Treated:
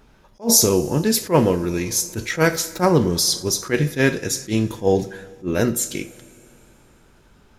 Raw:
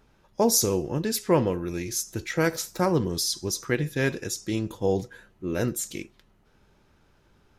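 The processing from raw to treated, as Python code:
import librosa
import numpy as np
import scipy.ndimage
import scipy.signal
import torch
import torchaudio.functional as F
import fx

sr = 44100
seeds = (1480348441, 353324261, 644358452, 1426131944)

y = fx.rev_double_slope(x, sr, seeds[0], early_s=0.37, late_s=3.1, knee_db=-18, drr_db=9.5)
y = fx.attack_slew(y, sr, db_per_s=300.0)
y = y * librosa.db_to_amplitude(7.5)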